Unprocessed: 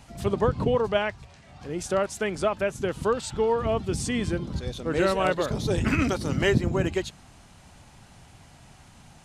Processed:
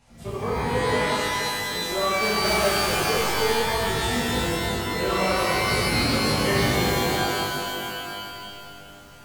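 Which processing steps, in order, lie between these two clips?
2.14–3.01 s: square wave that keeps the level; chorus 1.2 Hz, delay 16 ms, depth 3.3 ms; pitch-shifted reverb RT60 2.5 s, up +12 st, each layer -2 dB, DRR -8 dB; trim -7 dB

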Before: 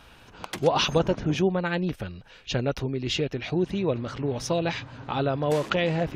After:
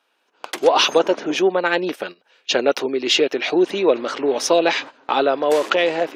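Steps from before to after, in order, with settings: in parallel at -9 dB: saturation -18.5 dBFS, distortion -15 dB; on the sum: high-pass 320 Hz 24 dB/octave; gate -40 dBFS, range -17 dB; level rider gain up to 10 dB

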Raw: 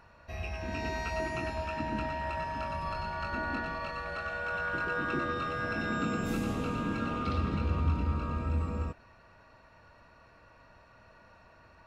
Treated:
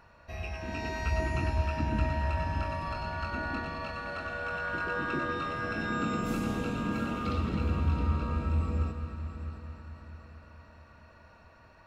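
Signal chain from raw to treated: 1.02–2.64 s: peaking EQ 74 Hz +12.5 dB 1.8 oct; multi-head delay 222 ms, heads first and third, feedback 54%, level -12.5 dB

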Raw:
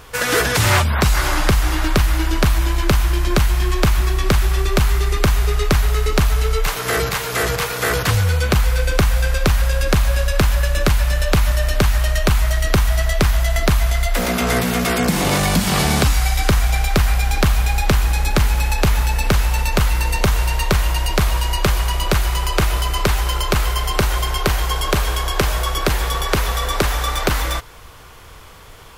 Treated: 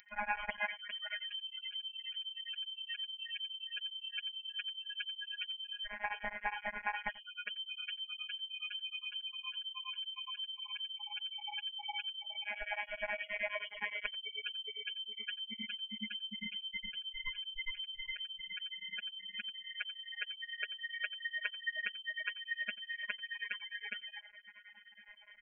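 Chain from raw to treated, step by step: spectral gate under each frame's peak -15 dB strong; bass shelf 390 Hz -9 dB; band-stop 1.2 kHz, Q 30; reverse; upward compressor, threshold -36 dBFS; reverse; robot voice 181 Hz; tape speed +14%; frequency inversion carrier 3.1 kHz; static phaser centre 1.9 kHz, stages 8; delay 88 ms -18.5 dB; tremolo of two beating tones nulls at 9.6 Hz; trim -6 dB

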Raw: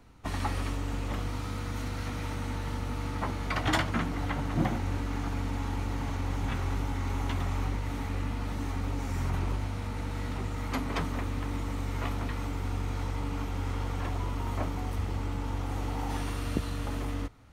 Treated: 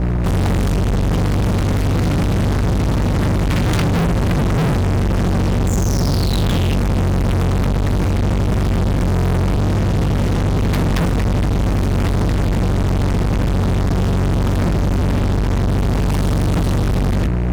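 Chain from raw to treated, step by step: painted sound fall, 5.67–6.75 s, 2.7–7.5 kHz -39 dBFS; hum 60 Hz, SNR 13 dB; resonant low shelf 250 Hz +13.5 dB, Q 3; fuzz box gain 37 dB, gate -42 dBFS; trim -1.5 dB

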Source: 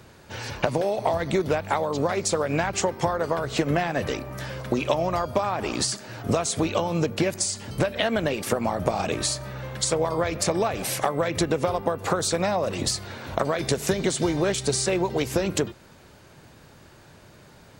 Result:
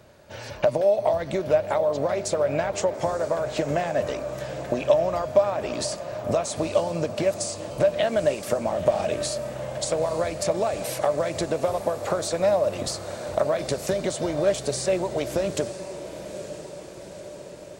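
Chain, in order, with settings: peaking EQ 600 Hz +14 dB 0.28 oct; echo that smears into a reverb 929 ms, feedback 62%, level -12 dB; trim -5 dB

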